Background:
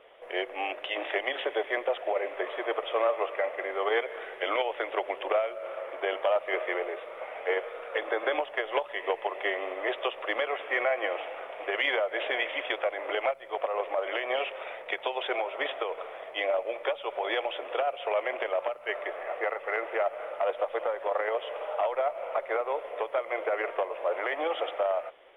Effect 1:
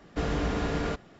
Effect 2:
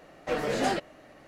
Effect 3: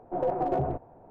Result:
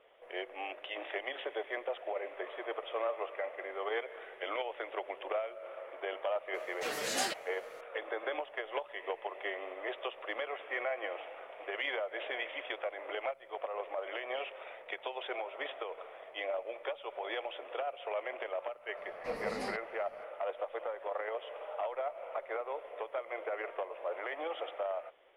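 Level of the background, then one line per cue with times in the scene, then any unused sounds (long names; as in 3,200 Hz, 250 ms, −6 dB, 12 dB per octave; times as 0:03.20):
background −8.5 dB
0:06.54: mix in 2 −6.5 dB + spectral tilt +4 dB per octave
0:18.97: mix in 2 −12.5 dB + EQ curve with evenly spaced ripples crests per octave 0.89, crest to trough 10 dB
not used: 1, 3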